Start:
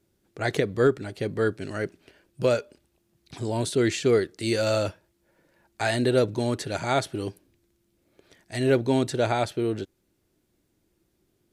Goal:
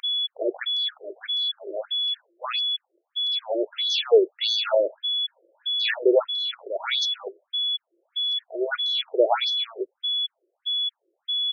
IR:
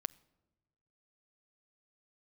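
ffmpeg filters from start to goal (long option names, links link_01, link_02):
-filter_complex "[0:a]aeval=exprs='val(0)+0.0355*sin(2*PI*3400*n/s)':channel_layout=same,asettb=1/sr,asplit=3[link_01][link_02][link_03];[link_01]atrim=end=6.224[link_04];[link_02]atrim=start=6.22:end=6.84,asetpts=PTS-STARTPTS,afade=type=in:duration=0.004:curve=qsin,afade=type=out:start_time=0.616:duration=0.004:curve=qsin,acrossover=split=430 4500:gain=0.0891 1 0.0891[link_05][link_06][link_07];[link_05][link_06][link_07]amix=inputs=3:normalize=0[link_08];[link_03]atrim=start=6.836[link_09];[link_04][link_08]acrossfade=duration=0.004:curve1=hsin:curve2=qsin[link_10];[link_10][link_09]acrossfade=duration=0.004:curve1=qsin:curve2=hsin,afftfilt=real='re*between(b*sr/1024,440*pow(4700/440,0.5+0.5*sin(2*PI*1.6*pts/sr))/1.41,440*pow(4700/440,0.5+0.5*sin(2*PI*1.6*pts/sr))*1.41)':imag='im*between(b*sr/1024,440*pow(4700/440,0.5+0.5*sin(2*PI*1.6*pts/sr))/1.41,440*pow(4700/440,0.5+0.5*sin(2*PI*1.6*pts/sr))*1.41)':win_size=1024:overlap=0.75,volume=7dB"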